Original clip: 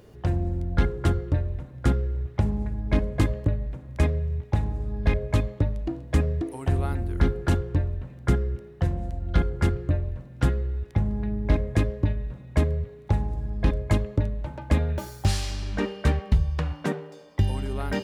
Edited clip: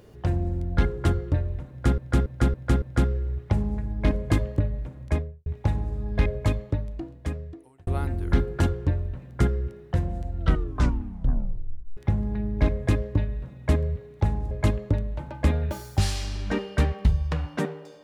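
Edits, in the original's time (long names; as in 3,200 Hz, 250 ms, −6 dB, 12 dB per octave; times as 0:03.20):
0:01.70–0:01.98: repeat, 5 plays
0:03.85–0:04.34: fade out and dull
0:05.22–0:06.75: fade out
0:09.26: tape stop 1.59 s
0:13.39–0:13.78: remove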